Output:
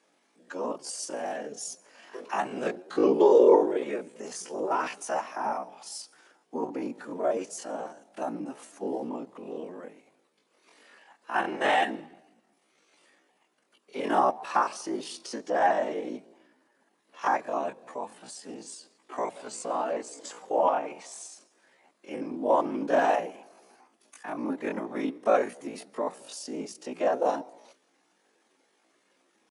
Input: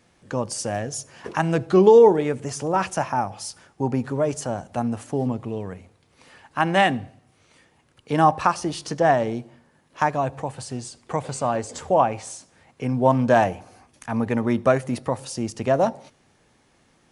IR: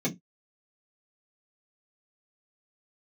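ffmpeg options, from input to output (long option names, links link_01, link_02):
-af "afftfilt=real='hypot(re,im)*cos(2*PI*random(0))':imag='hypot(re,im)*sin(2*PI*random(1))':win_size=512:overlap=0.75,atempo=0.58,highpass=frequency=260:width=0.5412,highpass=frequency=260:width=1.3066"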